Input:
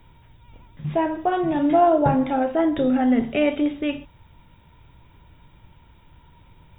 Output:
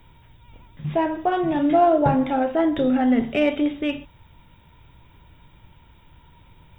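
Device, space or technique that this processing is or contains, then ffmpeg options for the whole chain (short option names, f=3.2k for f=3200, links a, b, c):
exciter from parts: -filter_complex "[0:a]asplit=2[a][b];[b]highpass=f=3.1k:p=1,asoftclip=type=tanh:threshold=-31dB,volume=-5.5dB[c];[a][c]amix=inputs=2:normalize=0,asettb=1/sr,asplit=3[d][e][f];[d]atrim=end=1.614[g];[e]atrim=start=1.61:end=2.03,asetpts=PTS-STARTPTS,afade=t=in:d=0.004:c=qsin,afade=t=out:st=0.416:d=0.004:c=qsin,bandreject=f=940:w=6.5[h];[f]atrim=start=2.026[i];[g][h]acrossfade=d=0.004:c1=hsin:c2=qsin[j];[j][i]acrossfade=d=0.004:c1=qsin:c2=hsin"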